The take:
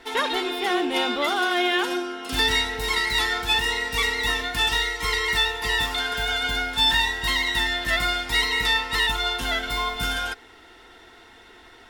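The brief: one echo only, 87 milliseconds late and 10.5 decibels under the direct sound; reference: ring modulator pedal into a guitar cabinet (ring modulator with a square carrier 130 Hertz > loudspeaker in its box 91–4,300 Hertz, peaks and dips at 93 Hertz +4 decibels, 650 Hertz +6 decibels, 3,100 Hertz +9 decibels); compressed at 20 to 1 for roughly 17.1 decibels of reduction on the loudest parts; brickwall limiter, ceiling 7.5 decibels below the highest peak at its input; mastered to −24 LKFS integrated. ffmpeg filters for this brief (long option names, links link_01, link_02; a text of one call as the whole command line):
ffmpeg -i in.wav -af "acompressor=threshold=-34dB:ratio=20,alimiter=level_in=7dB:limit=-24dB:level=0:latency=1,volume=-7dB,aecho=1:1:87:0.299,aeval=exprs='val(0)*sgn(sin(2*PI*130*n/s))':channel_layout=same,highpass=91,equalizer=frequency=93:width_type=q:width=4:gain=4,equalizer=frequency=650:width_type=q:width=4:gain=6,equalizer=frequency=3100:width_type=q:width=4:gain=9,lowpass=frequency=4300:width=0.5412,lowpass=frequency=4300:width=1.3066,volume=12dB" out.wav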